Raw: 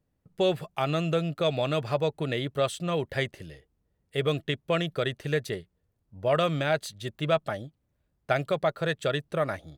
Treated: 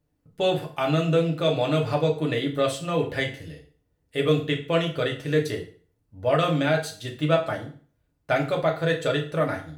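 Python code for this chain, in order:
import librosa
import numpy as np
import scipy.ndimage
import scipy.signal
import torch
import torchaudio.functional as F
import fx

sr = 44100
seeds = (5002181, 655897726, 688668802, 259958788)

y = fx.rev_fdn(x, sr, rt60_s=0.44, lf_ratio=1.0, hf_ratio=0.9, size_ms=20.0, drr_db=-0.5)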